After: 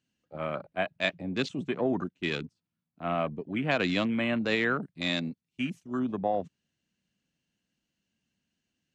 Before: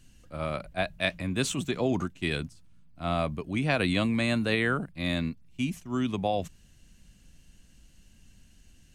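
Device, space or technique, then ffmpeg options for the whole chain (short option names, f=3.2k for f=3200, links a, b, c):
over-cleaned archive recording: -filter_complex "[0:a]asettb=1/sr,asplit=3[a][b][c];[a]atrim=end=4.824[d];[b]atrim=start=4.82:end=5.99,asetpts=PTS-STARTPTS,afade=t=in:d=0.004:c=qsin,afade=t=out:st=1.166:d=0.004:c=qsin,aemphasis=mode=production:type=75fm[e];[c]atrim=start=5.986[f];[d][e]acrossfade=d=0.004:c1=hsin:c2=qsin[g];[g][f]acrossfade=d=0.004:c1=qsin:c2=hsin,highpass=180,lowpass=5.2k,afwtdn=0.0141"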